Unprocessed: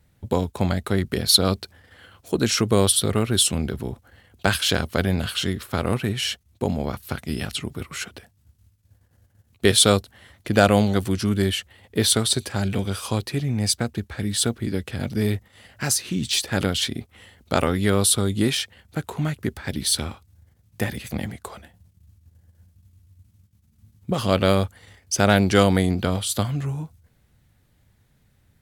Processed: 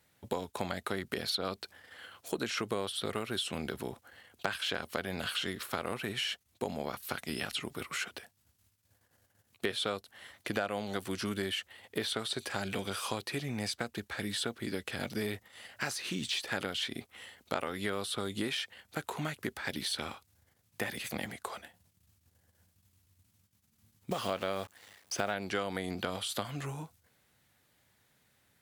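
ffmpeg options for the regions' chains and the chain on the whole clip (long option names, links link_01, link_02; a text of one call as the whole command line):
ffmpeg -i in.wav -filter_complex "[0:a]asettb=1/sr,asplit=3[link_01][link_02][link_03];[link_01]atrim=end=24.114[link_04];[link_02]atrim=start=24.11:end=25.34,asetpts=PTS-STARTPTS,afade=type=in:duration=0.004:curve=qsin,afade=type=out:start_time=1.226:duration=0.004:curve=qsin,equalizer=frequency=700:width=7.6:gain=4,acrusher=bits=7:dc=4:mix=0:aa=0.000001[link_05];[link_03]atrim=start=25.336[link_06];[link_04][link_05]acrossfade=duration=0.004:curve1=hsin:curve2=qsin[link_07];[link_07][link_06]acrossfade=duration=0.004:curve1=qsin:curve2=hsin,acrossover=split=3200[link_08][link_09];[link_09]acompressor=threshold=-37dB:ratio=4:attack=1:release=60[link_10];[link_08][link_10]amix=inputs=2:normalize=0,highpass=frequency=650:poles=1,acompressor=threshold=-31dB:ratio=5" out.wav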